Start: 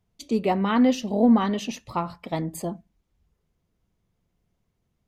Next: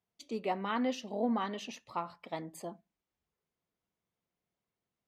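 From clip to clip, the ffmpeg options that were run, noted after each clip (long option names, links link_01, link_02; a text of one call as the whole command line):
ffmpeg -i in.wav -af "highpass=frequency=550:poles=1,highshelf=frequency=6900:gain=-9,volume=-7dB" out.wav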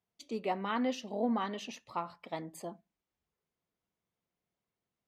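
ffmpeg -i in.wav -af anull out.wav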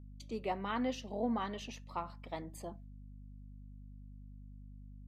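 ffmpeg -i in.wav -af "agate=range=-33dB:threshold=-55dB:ratio=3:detection=peak,aeval=exprs='val(0)+0.00447*(sin(2*PI*50*n/s)+sin(2*PI*2*50*n/s)/2+sin(2*PI*3*50*n/s)/3+sin(2*PI*4*50*n/s)/4+sin(2*PI*5*50*n/s)/5)':channel_layout=same,volume=-3dB" out.wav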